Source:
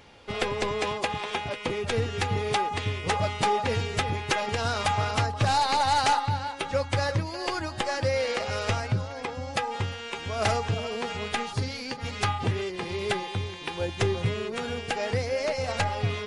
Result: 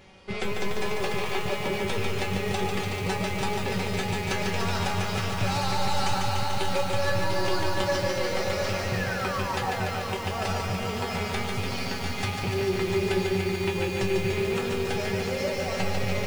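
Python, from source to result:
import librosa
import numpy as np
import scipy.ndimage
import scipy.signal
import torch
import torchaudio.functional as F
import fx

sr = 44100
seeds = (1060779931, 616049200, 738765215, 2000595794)

p1 = fx.rattle_buzz(x, sr, strikes_db=-29.0, level_db=-22.0)
p2 = fx.low_shelf(p1, sr, hz=270.0, db=6.0)
p3 = fx.over_compress(p2, sr, threshold_db=-29.0, ratio=-1.0)
p4 = p2 + F.gain(torch.from_numpy(p3), -2.0).numpy()
p5 = fx.spec_paint(p4, sr, seeds[0], shape='fall', start_s=8.93, length_s=0.97, low_hz=580.0, high_hz=1900.0, level_db=-28.0)
p6 = fx.comb_fb(p5, sr, f0_hz=190.0, decay_s=0.22, harmonics='all', damping=0.0, mix_pct=90)
p7 = fx.echo_feedback(p6, sr, ms=697, feedback_pct=51, wet_db=-7.0)
p8 = fx.echo_crushed(p7, sr, ms=146, feedback_pct=80, bits=8, wet_db=-4.0)
y = F.gain(torch.from_numpy(p8), 3.0).numpy()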